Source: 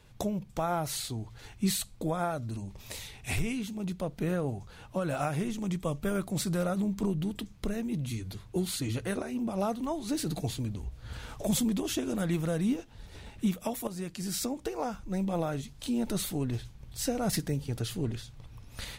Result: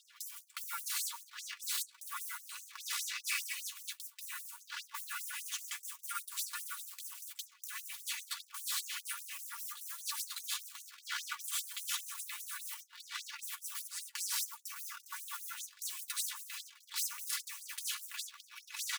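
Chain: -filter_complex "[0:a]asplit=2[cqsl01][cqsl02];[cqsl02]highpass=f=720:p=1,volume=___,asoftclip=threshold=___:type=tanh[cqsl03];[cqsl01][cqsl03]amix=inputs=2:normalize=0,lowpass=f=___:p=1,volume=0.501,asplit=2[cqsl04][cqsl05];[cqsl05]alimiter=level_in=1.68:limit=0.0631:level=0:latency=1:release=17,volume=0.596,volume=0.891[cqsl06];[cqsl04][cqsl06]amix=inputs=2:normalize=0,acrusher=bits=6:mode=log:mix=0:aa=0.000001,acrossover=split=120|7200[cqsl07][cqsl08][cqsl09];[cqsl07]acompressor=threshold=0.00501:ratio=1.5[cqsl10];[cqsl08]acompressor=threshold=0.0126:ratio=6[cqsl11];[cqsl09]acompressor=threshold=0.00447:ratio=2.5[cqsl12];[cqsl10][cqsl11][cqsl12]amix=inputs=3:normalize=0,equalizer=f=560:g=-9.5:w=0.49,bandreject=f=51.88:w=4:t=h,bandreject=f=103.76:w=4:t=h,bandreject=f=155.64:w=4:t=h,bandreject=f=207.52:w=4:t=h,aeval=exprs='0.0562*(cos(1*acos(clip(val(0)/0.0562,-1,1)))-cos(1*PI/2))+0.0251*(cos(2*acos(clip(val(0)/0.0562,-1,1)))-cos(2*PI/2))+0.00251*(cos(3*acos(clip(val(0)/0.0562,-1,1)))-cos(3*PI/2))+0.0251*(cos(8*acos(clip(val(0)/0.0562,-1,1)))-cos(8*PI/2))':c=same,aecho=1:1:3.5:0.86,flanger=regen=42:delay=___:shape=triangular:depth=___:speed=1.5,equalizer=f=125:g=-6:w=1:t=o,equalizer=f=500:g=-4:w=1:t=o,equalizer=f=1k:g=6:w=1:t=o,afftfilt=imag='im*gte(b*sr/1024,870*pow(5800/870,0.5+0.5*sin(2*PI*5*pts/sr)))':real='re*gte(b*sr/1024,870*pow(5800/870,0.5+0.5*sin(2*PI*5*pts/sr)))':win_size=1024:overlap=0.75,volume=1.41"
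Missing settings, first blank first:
5.01, 0.119, 1.6k, 6.7, 5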